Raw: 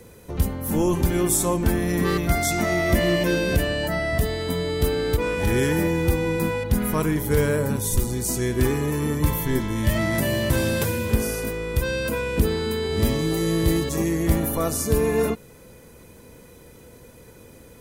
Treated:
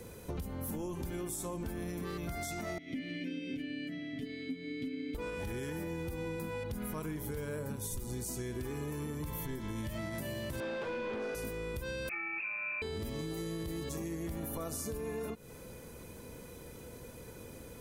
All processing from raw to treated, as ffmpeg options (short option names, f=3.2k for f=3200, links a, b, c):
-filter_complex "[0:a]asettb=1/sr,asplit=3[a][b][c];[a]atrim=end=2.784[d];[b]atrim=start=2.78:end=5.15,asetpts=PTS-STARTPTS,afade=t=in:d=0.004:c=qsin,afade=t=out:st=2.366:d=0.004:c=qsin,asplit=3[e][f][g];[e]bandpass=f=270:t=q:w=8,volume=0dB[h];[f]bandpass=f=2.29k:t=q:w=8,volume=-6dB[i];[g]bandpass=f=3.01k:t=q:w=8,volume=-9dB[j];[h][i][j]amix=inputs=3:normalize=0,aecho=1:1:7.3:0.8,atrim=end_sample=104517[k];[c]atrim=start=5.146[l];[d][k]acrossfade=d=0.004:c1=hsin:c2=qsin[m];[m][l]acrossfade=d=0.004:c1=qsin:c2=hsin,asettb=1/sr,asplit=3[n][o][p];[n]atrim=end=10.604[q];[o]atrim=start=10.6:end=11.35,asetpts=PTS-STARTPTS,afade=t=in:d=0.004:c=qsin,afade=t=out:st=0.746:d=0.004:c=qsin,highpass=240,lowpass=3.6k,asplit=2[r][s];[s]highpass=f=720:p=1,volume=19dB,asoftclip=type=tanh:threshold=-13.5dB[t];[r][t]amix=inputs=2:normalize=0,lowpass=f=1.3k:p=1,volume=-6dB[u];[p]atrim=start=11.346[v];[q][u]acrossfade=d=0.004:c1=hsin:c2=qsin[w];[w][v]acrossfade=d=0.004:c1=qsin:c2=hsin,asettb=1/sr,asplit=3[x][y][z];[x]atrim=end=12.094[aa];[y]atrim=start=12.09:end=12.82,asetpts=PTS-STARTPTS,afade=t=in:d=0.004:c=qsin,afade=t=out:st=0.726:d=0.004:c=qsin,highpass=260,lowpass=f=2.4k:t=q:w=0.5098,lowpass=f=2.4k:t=q:w=0.6013,lowpass=f=2.4k:t=q:w=0.9,lowpass=f=2.4k:t=q:w=2.563,afreqshift=-2800[ab];[z]atrim=start=12.816[ac];[aa][ab]acrossfade=d=0.004:c1=hsin:c2=qsin[ad];[ad][ac]acrossfade=d=0.004:c1=qsin:c2=hsin,bandreject=f=1.9k:w=17,alimiter=limit=-19.5dB:level=0:latency=1:release=223,acompressor=threshold=-34dB:ratio=6,volume=-2dB"